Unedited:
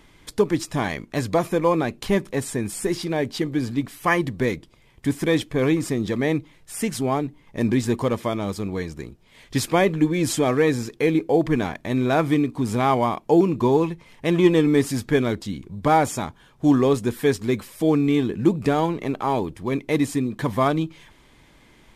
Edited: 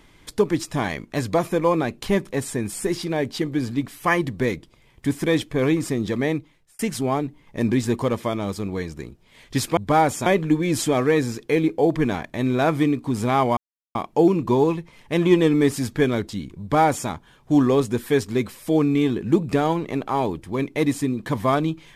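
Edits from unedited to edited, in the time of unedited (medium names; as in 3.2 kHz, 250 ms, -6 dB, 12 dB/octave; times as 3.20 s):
6.23–6.79 s: fade out
13.08 s: insert silence 0.38 s
15.73–16.22 s: copy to 9.77 s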